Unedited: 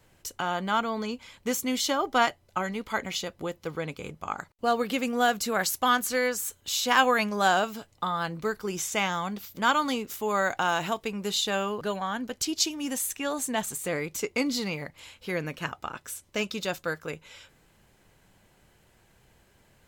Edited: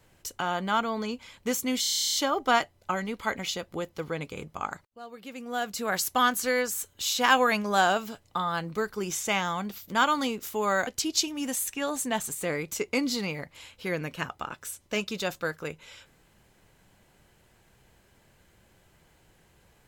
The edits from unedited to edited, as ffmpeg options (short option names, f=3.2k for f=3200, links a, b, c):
-filter_complex "[0:a]asplit=14[a][b][c][d][e][f][g][h][i][j][k][l][m][n];[a]atrim=end=1.842[o];[b]atrim=start=1.808:end=1.842[p];[c]atrim=start=1.808:end=1.842[q];[d]atrim=start=1.808:end=1.842[r];[e]atrim=start=1.808:end=1.842[s];[f]atrim=start=1.808:end=1.842[t];[g]atrim=start=1.808:end=1.842[u];[h]atrim=start=1.808:end=1.842[v];[i]atrim=start=1.808:end=1.842[w];[j]atrim=start=1.808:end=1.842[x];[k]atrim=start=1.808:end=1.842[y];[l]atrim=start=1.808:end=4.54,asetpts=PTS-STARTPTS,afade=t=out:st=2.728:d=0.004:c=hsin:silence=0.0944061[z];[m]atrim=start=4.54:end=10.542,asetpts=PTS-STARTPTS,afade=t=in:d=1.17:c=qua:silence=0.0944061[aa];[n]atrim=start=12.298[ab];[o][p]acrossfade=d=0.004:c1=hsin:c2=hsin[ac];[ac][q]acrossfade=d=0.004:c1=hsin:c2=hsin[ad];[ad][r]acrossfade=d=0.004:c1=hsin:c2=hsin[ae];[ae][s]acrossfade=d=0.004:c1=hsin:c2=hsin[af];[af][t]acrossfade=d=0.004:c1=hsin:c2=hsin[ag];[ag][u]acrossfade=d=0.004:c1=hsin:c2=hsin[ah];[ah][v]acrossfade=d=0.004:c1=hsin:c2=hsin[ai];[ai][w]acrossfade=d=0.004:c1=hsin:c2=hsin[aj];[aj][x]acrossfade=d=0.004:c1=hsin:c2=hsin[ak];[ak][y]acrossfade=d=0.004:c1=hsin:c2=hsin[al];[z][aa]concat=n=2:v=0:a=1[am];[al][am]acrossfade=d=0.004:c1=hsin:c2=hsin[an];[an][ab]acrossfade=d=0.004:c1=hsin:c2=hsin"